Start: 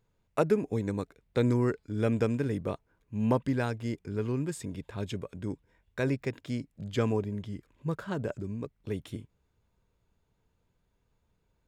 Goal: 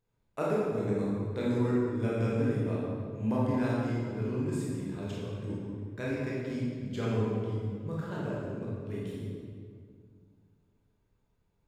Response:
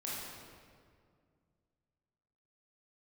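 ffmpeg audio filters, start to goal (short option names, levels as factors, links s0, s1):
-filter_complex "[1:a]atrim=start_sample=2205[s0];[0:a][s0]afir=irnorm=-1:irlink=0,volume=0.668"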